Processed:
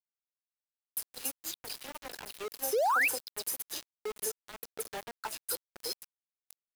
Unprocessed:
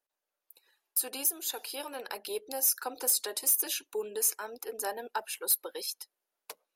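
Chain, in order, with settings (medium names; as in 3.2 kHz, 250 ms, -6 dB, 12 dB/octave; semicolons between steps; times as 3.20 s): dynamic bell 4.8 kHz, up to +6 dB, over -54 dBFS, Q 4.5; compression 6:1, threshold -33 dBFS, peak gain reduction 11 dB; painted sound rise, 2.62–3.03 s, 390–2800 Hz -27 dBFS; phase dispersion lows, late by 107 ms, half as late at 2.7 kHz; small samples zeroed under -35.5 dBFS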